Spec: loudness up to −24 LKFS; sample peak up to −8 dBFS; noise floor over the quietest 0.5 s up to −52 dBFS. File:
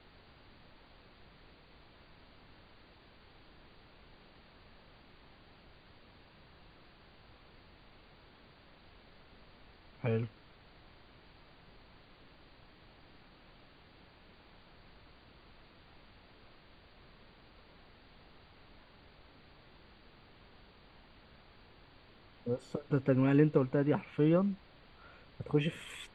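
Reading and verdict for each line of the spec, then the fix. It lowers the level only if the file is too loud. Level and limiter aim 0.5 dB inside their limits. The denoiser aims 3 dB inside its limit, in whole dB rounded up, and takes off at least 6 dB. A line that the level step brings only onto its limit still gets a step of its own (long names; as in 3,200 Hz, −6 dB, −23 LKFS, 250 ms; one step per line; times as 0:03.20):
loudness −32.5 LKFS: in spec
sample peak −14.0 dBFS: in spec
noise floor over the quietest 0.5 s −60 dBFS: in spec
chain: no processing needed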